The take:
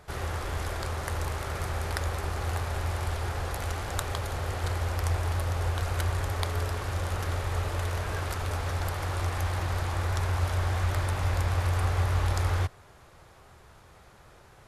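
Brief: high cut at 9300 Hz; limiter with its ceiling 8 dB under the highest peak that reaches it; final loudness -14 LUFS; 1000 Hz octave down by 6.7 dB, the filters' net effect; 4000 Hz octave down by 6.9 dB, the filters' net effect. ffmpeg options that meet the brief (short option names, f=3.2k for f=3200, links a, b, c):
-af "lowpass=9.3k,equalizer=f=1k:t=o:g=-8.5,equalizer=f=4k:t=o:g=-8.5,volume=18.5dB,alimiter=limit=-3dB:level=0:latency=1"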